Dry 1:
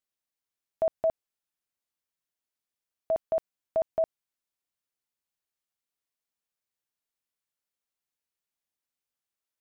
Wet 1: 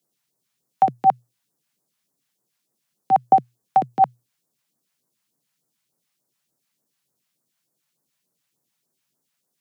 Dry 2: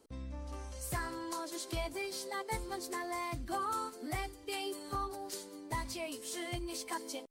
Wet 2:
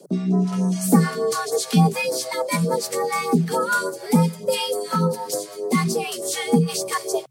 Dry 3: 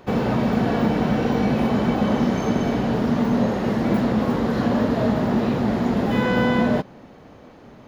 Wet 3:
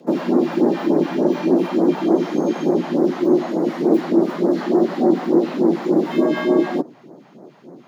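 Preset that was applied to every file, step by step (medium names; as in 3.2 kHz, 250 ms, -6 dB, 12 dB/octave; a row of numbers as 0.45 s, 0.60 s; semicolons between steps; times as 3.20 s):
tilt shelf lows +4.5 dB, about 660 Hz; frequency shift +120 Hz; phase shifter stages 2, 3.4 Hz, lowest notch 320–2800 Hz; peak normalisation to -3 dBFS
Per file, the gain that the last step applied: +17.5 dB, +20.0 dB, +2.5 dB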